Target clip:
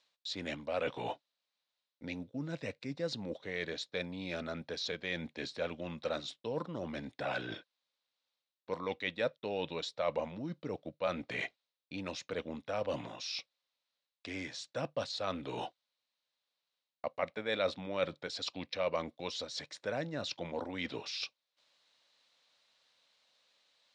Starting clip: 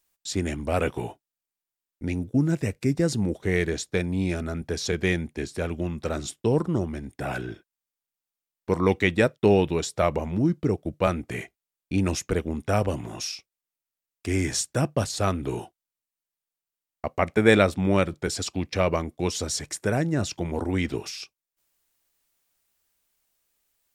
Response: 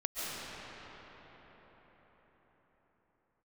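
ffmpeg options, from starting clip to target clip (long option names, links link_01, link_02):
-af "aemphasis=mode=production:type=75kf,areverse,acompressor=threshold=-38dB:ratio=5,areverse,highpass=190,equalizer=frequency=200:width_type=q:width=4:gain=-4,equalizer=frequency=370:width_type=q:width=4:gain=-10,equalizer=frequency=540:width_type=q:width=4:gain=8,equalizer=frequency=1000:width_type=q:width=4:gain=3,equalizer=frequency=3900:width_type=q:width=4:gain=7,lowpass=frequency=4300:width=0.5412,lowpass=frequency=4300:width=1.3066,volume=3.5dB"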